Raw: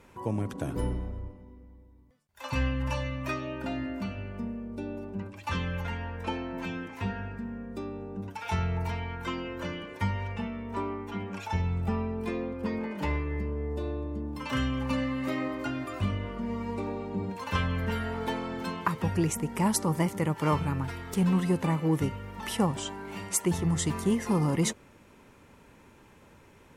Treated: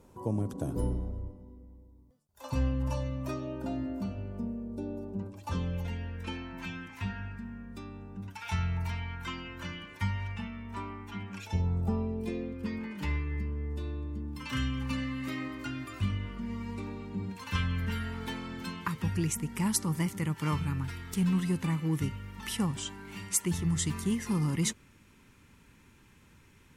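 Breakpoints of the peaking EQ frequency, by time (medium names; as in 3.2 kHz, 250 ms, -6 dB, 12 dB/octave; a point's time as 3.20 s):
peaking EQ -14.5 dB 1.6 oct
5.57 s 2.1 kHz
6.51 s 480 Hz
11.33 s 480 Hz
11.70 s 2.8 kHz
12.77 s 610 Hz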